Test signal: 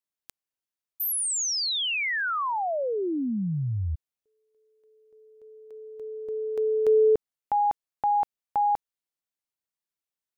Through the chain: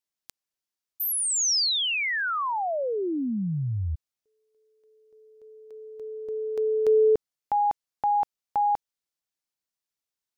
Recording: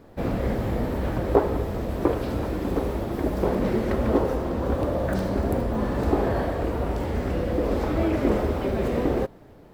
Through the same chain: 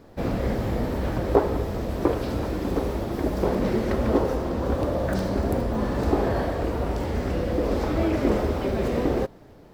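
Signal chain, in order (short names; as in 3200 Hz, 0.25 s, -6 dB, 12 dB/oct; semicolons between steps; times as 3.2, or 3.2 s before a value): bell 5300 Hz +4.5 dB 1 oct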